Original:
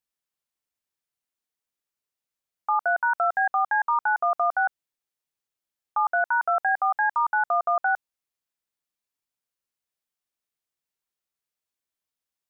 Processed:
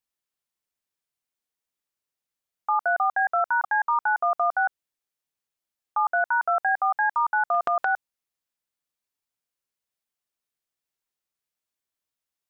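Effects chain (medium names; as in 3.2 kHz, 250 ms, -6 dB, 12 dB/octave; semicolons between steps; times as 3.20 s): 3.00–3.64 s: reverse; 7.54–7.94 s: transient shaper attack -3 dB, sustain +10 dB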